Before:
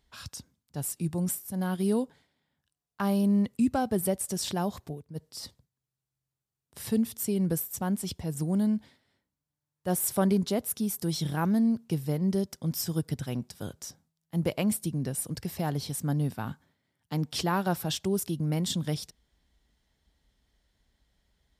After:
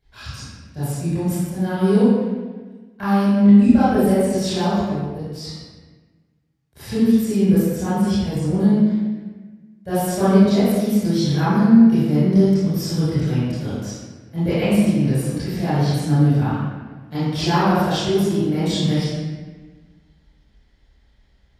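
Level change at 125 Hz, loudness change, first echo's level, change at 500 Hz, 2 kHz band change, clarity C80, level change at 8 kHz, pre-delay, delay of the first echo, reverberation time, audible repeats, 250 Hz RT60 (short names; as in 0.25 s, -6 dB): +12.0 dB, +11.5 dB, none, +11.5 dB, +10.5 dB, -1.0 dB, 0.0 dB, 25 ms, none, 1.3 s, none, 1.7 s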